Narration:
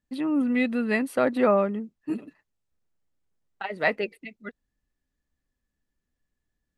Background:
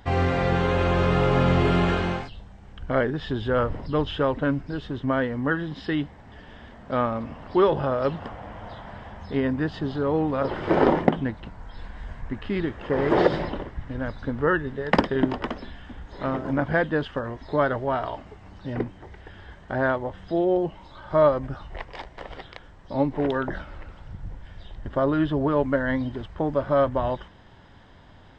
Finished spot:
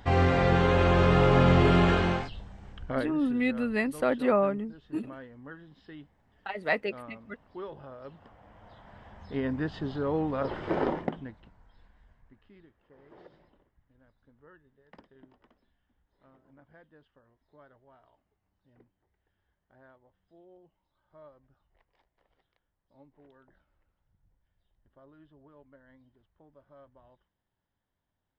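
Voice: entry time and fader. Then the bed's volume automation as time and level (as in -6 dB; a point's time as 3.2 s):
2.85 s, -3.5 dB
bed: 2.67 s -0.5 dB
3.44 s -21 dB
8.05 s -21 dB
9.54 s -5.5 dB
10.5 s -5.5 dB
12.93 s -34.5 dB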